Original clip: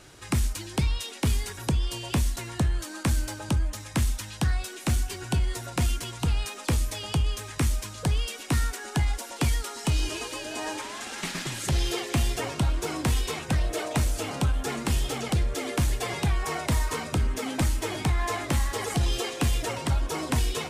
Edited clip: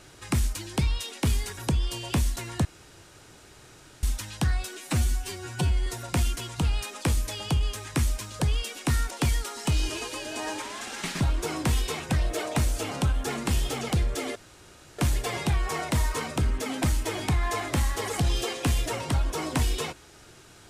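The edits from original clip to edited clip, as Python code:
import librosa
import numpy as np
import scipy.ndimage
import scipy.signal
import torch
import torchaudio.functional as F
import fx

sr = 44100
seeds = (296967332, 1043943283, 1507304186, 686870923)

y = fx.edit(x, sr, fx.room_tone_fill(start_s=2.65, length_s=1.38),
    fx.stretch_span(start_s=4.77, length_s=0.73, factor=1.5),
    fx.cut(start_s=8.74, length_s=0.56),
    fx.cut(start_s=11.4, length_s=1.2),
    fx.insert_room_tone(at_s=15.75, length_s=0.63), tone=tone)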